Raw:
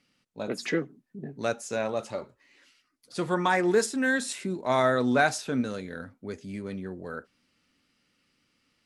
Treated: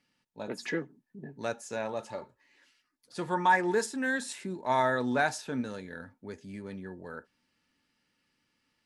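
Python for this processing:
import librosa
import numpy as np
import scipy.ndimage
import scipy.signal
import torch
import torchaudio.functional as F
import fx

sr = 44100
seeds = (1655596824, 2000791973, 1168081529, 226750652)

y = fx.small_body(x, sr, hz=(900.0, 1700.0), ring_ms=55, db=12)
y = y * librosa.db_to_amplitude(-5.5)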